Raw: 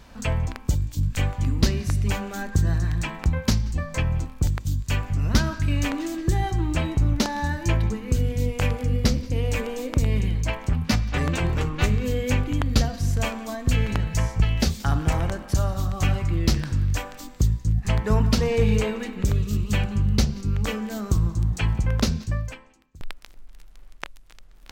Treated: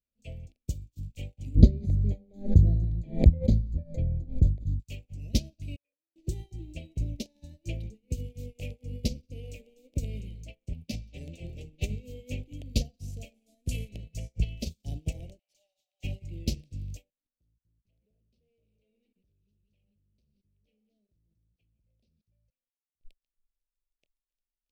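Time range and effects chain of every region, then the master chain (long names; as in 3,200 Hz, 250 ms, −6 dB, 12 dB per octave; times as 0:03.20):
0:01.55–0:04.80: moving average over 16 samples + low-shelf EQ 220 Hz +5.5 dB + background raised ahead of every attack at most 66 dB per second
0:05.76–0:06.16: formant resonators in series e + spectral tilt +4.5 dB per octave + noise gate −44 dBFS, range −6 dB
0:13.34–0:13.89: variable-slope delta modulation 64 kbit/s + high-shelf EQ 7,800 Hz +9 dB
0:15.39–0:16.04: Bessel high-pass filter 1,200 Hz, order 8 + mid-hump overdrive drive 22 dB, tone 1,700 Hz, clips at −14.5 dBFS
0:17.10–0:23.05: Savitzky-Golay smoothing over 15 samples + hard clipping −18.5 dBFS + output level in coarse steps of 18 dB
whole clip: Chebyshev band-stop filter 610–2,500 Hz, order 3; expander for the loud parts 2.5 to 1, over −42 dBFS; level +2 dB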